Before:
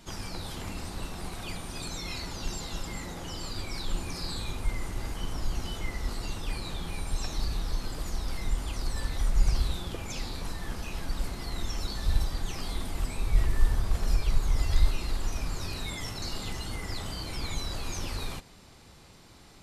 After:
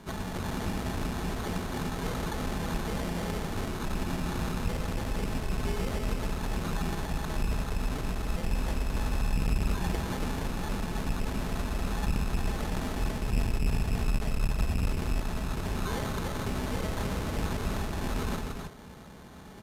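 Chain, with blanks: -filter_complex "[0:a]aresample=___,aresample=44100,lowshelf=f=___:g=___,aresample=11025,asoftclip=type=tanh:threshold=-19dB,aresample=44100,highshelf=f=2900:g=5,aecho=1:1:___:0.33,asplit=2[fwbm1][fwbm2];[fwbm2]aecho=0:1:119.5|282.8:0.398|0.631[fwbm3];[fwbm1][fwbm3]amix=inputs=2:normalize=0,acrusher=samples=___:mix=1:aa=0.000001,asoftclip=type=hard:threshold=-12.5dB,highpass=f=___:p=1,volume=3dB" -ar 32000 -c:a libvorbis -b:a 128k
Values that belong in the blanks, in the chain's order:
8000, 220, 8, 4.7, 17, 120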